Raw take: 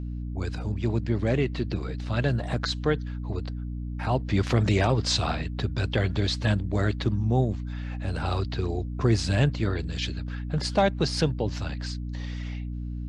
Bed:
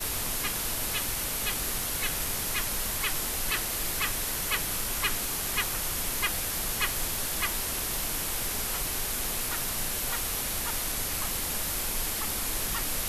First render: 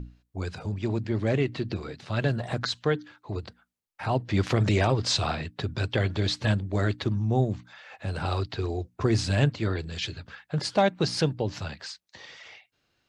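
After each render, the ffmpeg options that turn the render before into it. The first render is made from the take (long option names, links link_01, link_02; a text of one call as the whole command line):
ffmpeg -i in.wav -af "bandreject=frequency=60:width_type=h:width=6,bandreject=frequency=120:width_type=h:width=6,bandreject=frequency=180:width_type=h:width=6,bandreject=frequency=240:width_type=h:width=6,bandreject=frequency=300:width_type=h:width=6" out.wav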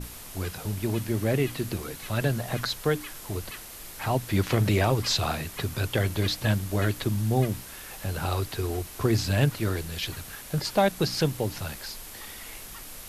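ffmpeg -i in.wav -i bed.wav -filter_complex "[1:a]volume=-11.5dB[link_01];[0:a][link_01]amix=inputs=2:normalize=0" out.wav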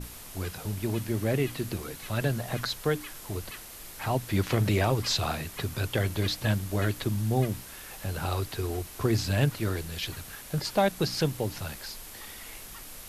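ffmpeg -i in.wav -af "volume=-2dB" out.wav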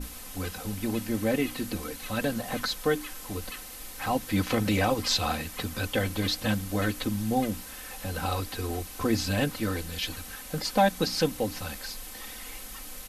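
ffmpeg -i in.wav -af "aecho=1:1:3.9:0.78" out.wav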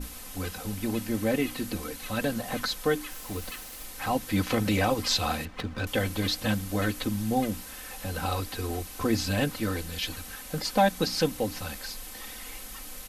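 ffmpeg -i in.wav -filter_complex "[0:a]asettb=1/sr,asplit=3[link_01][link_02][link_03];[link_01]atrim=end=3.114[link_04];[link_02]atrim=start=3.11:end=3.85,asetpts=PTS-STARTPTS,afade=type=in:duration=0.004:curve=qsin,afade=type=out:start_time=0.736:duration=0.004:curve=qsin,acrusher=bits=6:mix=0:aa=0.5[link_05];[link_03]atrim=start=3.846[link_06];[link_04][link_05]acrossfade=duration=0.004:curve1=hsin:curve2=qsin[link_07];[link_07][link_06]acrossfade=duration=0.004:curve1=qsin:curve2=hsin,asettb=1/sr,asplit=3[link_08][link_09][link_10];[link_08]atrim=end=5.454[link_11];[link_09]atrim=start=5.45:end=5.87,asetpts=PTS-STARTPTS,afade=type=in:duration=0.004:curve=qsin,afade=type=out:start_time=0.416:duration=0.004:curve=qsin,adynamicsmooth=sensitivity=5.5:basefreq=2000[link_12];[link_10]atrim=start=5.866[link_13];[link_11][link_12]acrossfade=duration=0.004:curve1=hsin:curve2=qsin[link_14];[link_14][link_13]acrossfade=duration=0.004:curve1=qsin:curve2=hsin" out.wav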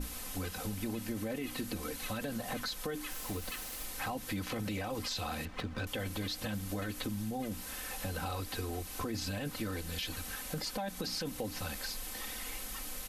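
ffmpeg -i in.wav -af "alimiter=limit=-22dB:level=0:latency=1:release=19,acompressor=threshold=-35dB:ratio=4" out.wav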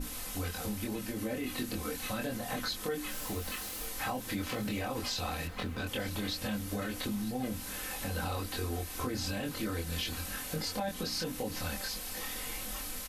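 ffmpeg -i in.wav -filter_complex "[0:a]asplit=2[link_01][link_02];[link_02]adelay=24,volume=-2dB[link_03];[link_01][link_03]amix=inputs=2:normalize=0,aecho=1:1:954|1908|2862|3816|4770:0.141|0.0805|0.0459|0.0262|0.0149" out.wav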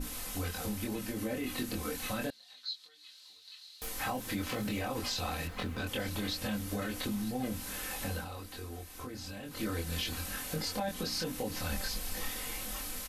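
ffmpeg -i in.wav -filter_complex "[0:a]asettb=1/sr,asplit=3[link_01][link_02][link_03];[link_01]atrim=end=2.304[link_04];[link_02]atrim=start=2.3:end=3.82,asetpts=PTS-STARTPTS,afade=type=in:duration=0.004:curve=qsin,afade=type=out:start_time=1.516:duration=0.004:curve=qsin,bandpass=frequency=4100:width_type=q:width=7[link_05];[link_03]atrim=start=3.816[link_06];[link_04][link_05]acrossfade=duration=0.004:curve1=hsin:curve2=qsin[link_07];[link_07][link_06]acrossfade=duration=0.004:curve1=qsin:curve2=hsin,asettb=1/sr,asplit=3[link_08][link_09][link_10];[link_08]atrim=end=11.704[link_11];[link_09]atrim=start=11.7:end=12.3,asetpts=PTS-STARTPTS,afade=type=in:duration=0.004:curve=qsin,afade=type=out:start_time=0.596:duration=0.004:curve=qsin,lowshelf=frequency=130:gain=9[link_12];[link_10]atrim=start=12.296[link_13];[link_11][link_12]acrossfade=duration=0.004:curve1=hsin:curve2=qsin[link_14];[link_14][link_13]acrossfade=duration=0.004:curve1=qsin:curve2=hsin,asplit=3[link_15][link_16][link_17];[link_15]atrim=end=8.25,asetpts=PTS-STARTPTS,afade=type=out:start_time=8.12:duration=0.13:silence=0.398107[link_18];[link_16]atrim=start=8.25:end=9.5,asetpts=PTS-STARTPTS,volume=-8dB[link_19];[link_17]atrim=start=9.5,asetpts=PTS-STARTPTS,afade=type=in:duration=0.13:silence=0.398107[link_20];[link_18][link_19][link_20]concat=n=3:v=0:a=1" out.wav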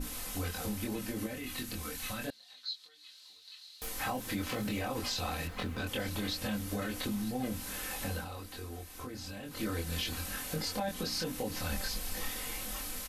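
ffmpeg -i in.wav -filter_complex "[0:a]asettb=1/sr,asplit=3[link_01][link_02][link_03];[link_01]atrim=end=1.264[link_04];[link_02]atrim=start=1.26:end=2.28,asetpts=PTS-STARTPTS,afade=type=in:duration=0.004:curve=qsin,afade=type=out:start_time=1.016:duration=0.004:curve=qsin,equalizer=frequency=420:width_type=o:width=2.6:gain=-7.5[link_05];[link_03]atrim=start=2.276[link_06];[link_04][link_05]acrossfade=duration=0.004:curve1=hsin:curve2=qsin[link_07];[link_07][link_06]acrossfade=duration=0.004:curve1=qsin:curve2=hsin" out.wav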